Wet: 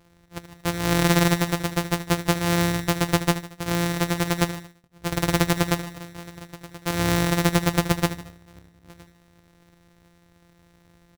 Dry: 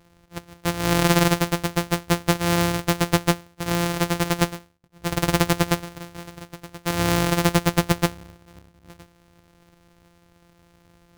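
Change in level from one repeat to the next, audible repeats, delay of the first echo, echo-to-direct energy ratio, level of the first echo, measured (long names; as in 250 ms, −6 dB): −6.0 dB, 3, 76 ms, −12.0 dB, −13.0 dB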